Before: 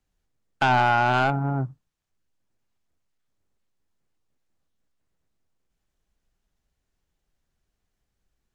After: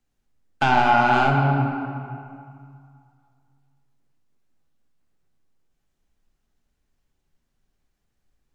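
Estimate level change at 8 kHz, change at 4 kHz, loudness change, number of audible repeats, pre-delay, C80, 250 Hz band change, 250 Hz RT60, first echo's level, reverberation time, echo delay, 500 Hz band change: can't be measured, +1.5 dB, +2.5 dB, no echo audible, 3 ms, 4.0 dB, +5.0 dB, 2.4 s, no echo audible, 2.3 s, no echo audible, +2.5 dB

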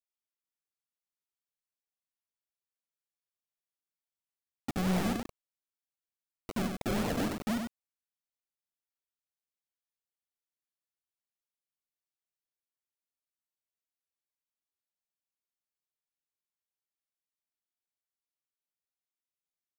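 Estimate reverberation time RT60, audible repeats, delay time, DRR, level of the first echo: no reverb audible, 1, 97 ms, no reverb audible, −5.5 dB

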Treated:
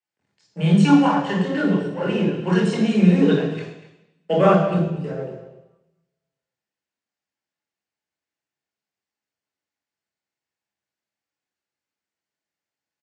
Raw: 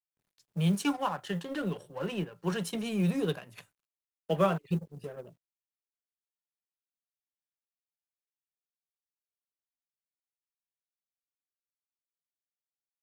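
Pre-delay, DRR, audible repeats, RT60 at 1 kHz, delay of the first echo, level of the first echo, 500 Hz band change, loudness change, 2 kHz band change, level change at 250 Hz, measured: 23 ms, −3.0 dB, 1, 0.95 s, 239 ms, −15.5 dB, +12.5 dB, +13.0 dB, +12.5 dB, +14.5 dB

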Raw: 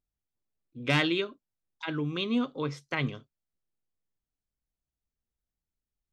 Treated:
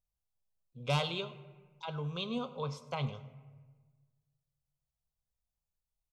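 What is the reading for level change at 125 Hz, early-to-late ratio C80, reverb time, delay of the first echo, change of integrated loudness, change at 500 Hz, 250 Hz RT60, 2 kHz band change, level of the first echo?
−2.5 dB, 14.5 dB, 1.4 s, 101 ms, −6.5 dB, −5.0 dB, 1.7 s, −11.5 dB, −19.0 dB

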